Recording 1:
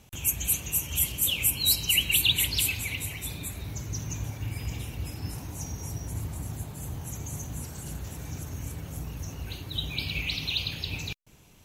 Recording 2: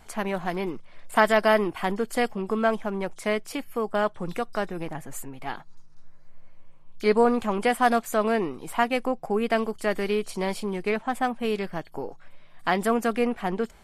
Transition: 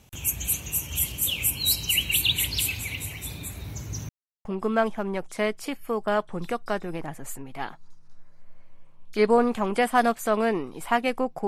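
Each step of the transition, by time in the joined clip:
recording 1
4.09–4.45 mute
4.45 switch to recording 2 from 2.32 s

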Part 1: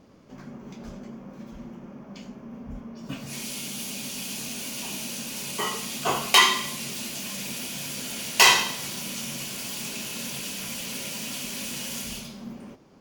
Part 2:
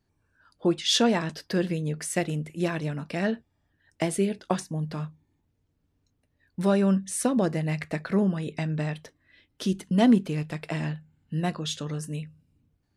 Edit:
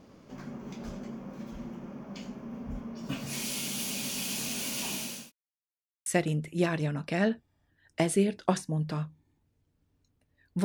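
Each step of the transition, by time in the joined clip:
part 1
4.78–5.32 fade out equal-power
5.32–6.06 mute
6.06 switch to part 2 from 2.08 s

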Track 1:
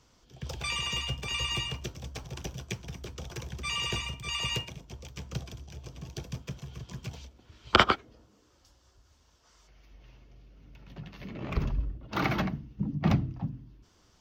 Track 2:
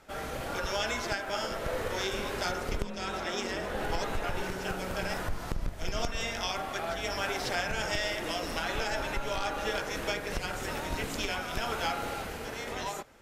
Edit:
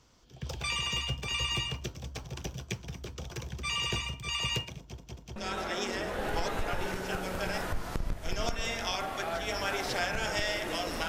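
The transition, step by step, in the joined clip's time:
track 1
4.79 stutter in place 0.19 s, 3 plays
5.36 switch to track 2 from 2.92 s

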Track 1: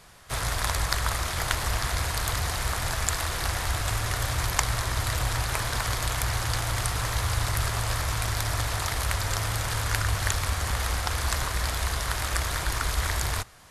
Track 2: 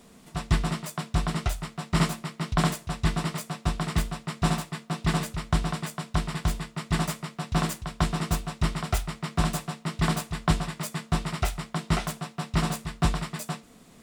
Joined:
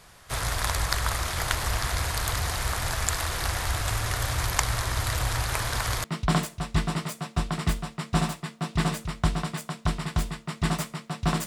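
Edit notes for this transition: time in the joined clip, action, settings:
track 1
6.04 switch to track 2 from 2.33 s

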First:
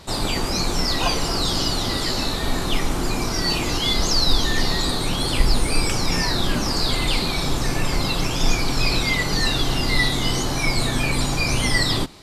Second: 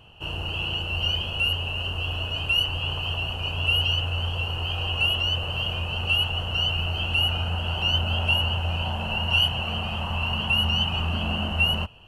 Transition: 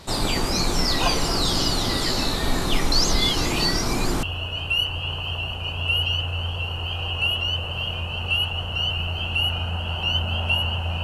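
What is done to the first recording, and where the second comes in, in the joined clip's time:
first
2.92–4.23 reverse
4.23 switch to second from 2.02 s

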